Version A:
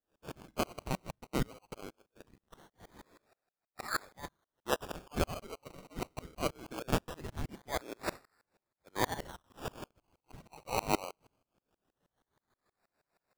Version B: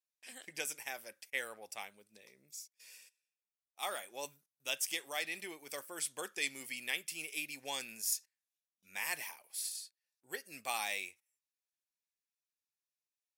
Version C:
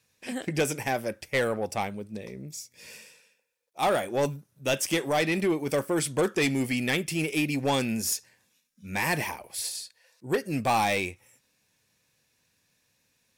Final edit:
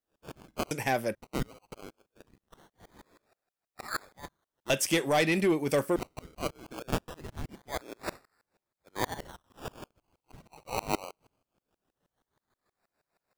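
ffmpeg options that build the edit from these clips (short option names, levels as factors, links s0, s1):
-filter_complex "[2:a]asplit=2[s0][s1];[0:a]asplit=3[s2][s3][s4];[s2]atrim=end=0.712[s5];[s0]atrim=start=0.708:end=1.152[s6];[s3]atrim=start=1.148:end=4.702[s7];[s1]atrim=start=4.698:end=5.962[s8];[s4]atrim=start=5.958[s9];[s5][s6]acrossfade=d=0.004:c1=hsin:c2=hsin[s10];[s10][s7]acrossfade=d=0.004:c1=hsin:c2=hsin[s11];[s11][s8]acrossfade=d=0.004:c1=hsin:c2=hsin[s12];[s12][s9]acrossfade=d=0.004:c1=hsin:c2=hsin"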